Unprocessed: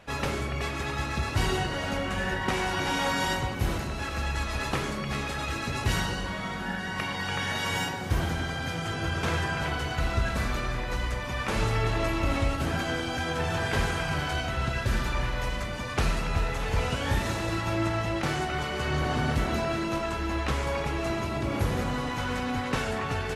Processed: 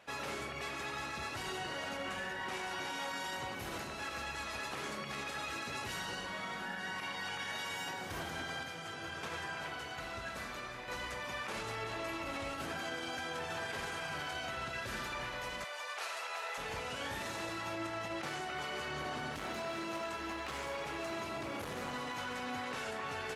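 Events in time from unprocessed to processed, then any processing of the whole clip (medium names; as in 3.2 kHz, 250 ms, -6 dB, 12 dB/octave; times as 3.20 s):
8.63–10.88 s: flange 1.2 Hz, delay 0.7 ms, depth 9.4 ms, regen -80%
15.64–16.58 s: high-pass 540 Hz 24 dB/octave
19.36–22.21 s: hard clipper -25.5 dBFS
whole clip: high-pass 460 Hz 6 dB/octave; peak limiter -26 dBFS; trim -5 dB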